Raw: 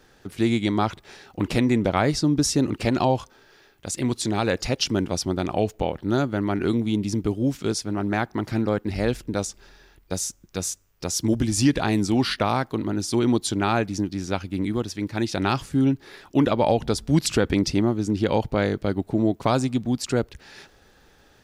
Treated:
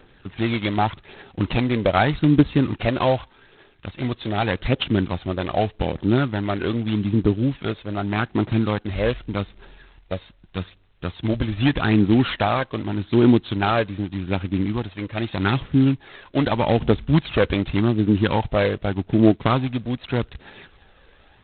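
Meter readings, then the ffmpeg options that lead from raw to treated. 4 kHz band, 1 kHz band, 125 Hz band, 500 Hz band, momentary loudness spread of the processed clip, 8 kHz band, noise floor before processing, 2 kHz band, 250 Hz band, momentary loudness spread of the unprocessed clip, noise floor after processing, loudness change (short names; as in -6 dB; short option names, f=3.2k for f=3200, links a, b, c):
-0.5 dB, +2.0 dB, +4.0 dB, +1.5 dB, 12 LU, under -40 dB, -57 dBFS, +3.5 dB, +2.0 dB, 8 LU, -54 dBFS, +2.0 dB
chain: -af "aeval=exprs='0.447*(cos(1*acos(clip(val(0)/0.447,-1,1)))-cos(1*PI/2))+0.0891*(cos(3*acos(clip(val(0)/0.447,-1,1)))-cos(3*PI/2))+0.0178*(cos(5*acos(clip(val(0)/0.447,-1,1)))-cos(5*PI/2))':c=same,aphaser=in_gain=1:out_gain=1:delay=2:decay=0.51:speed=0.83:type=triangular,volume=5dB" -ar 8000 -c:a adpcm_g726 -b:a 16k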